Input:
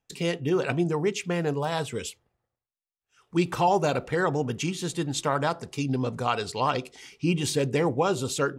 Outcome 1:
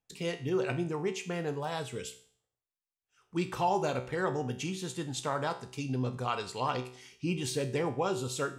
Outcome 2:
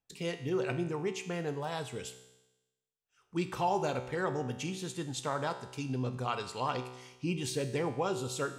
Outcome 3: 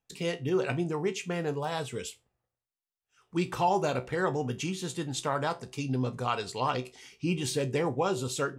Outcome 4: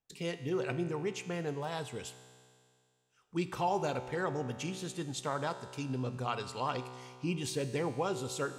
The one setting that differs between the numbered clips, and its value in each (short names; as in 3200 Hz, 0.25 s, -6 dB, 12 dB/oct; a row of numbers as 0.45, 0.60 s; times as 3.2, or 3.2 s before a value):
resonator, decay: 0.5, 1, 0.2, 2.2 s